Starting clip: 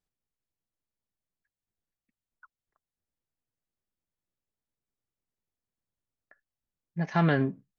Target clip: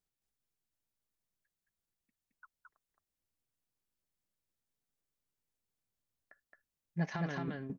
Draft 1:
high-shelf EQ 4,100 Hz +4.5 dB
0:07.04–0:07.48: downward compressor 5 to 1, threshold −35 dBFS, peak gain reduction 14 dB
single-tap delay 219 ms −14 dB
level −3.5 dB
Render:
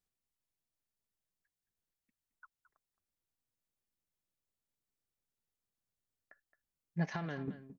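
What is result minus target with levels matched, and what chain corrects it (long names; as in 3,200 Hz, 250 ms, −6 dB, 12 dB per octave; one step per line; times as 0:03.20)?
echo-to-direct −12 dB
high-shelf EQ 4,100 Hz +4.5 dB
0:07.04–0:07.48: downward compressor 5 to 1, threshold −35 dBFS, peak gain reduction 14 dB
single-tap delay 219 ms −2 dB
level −3.5 dB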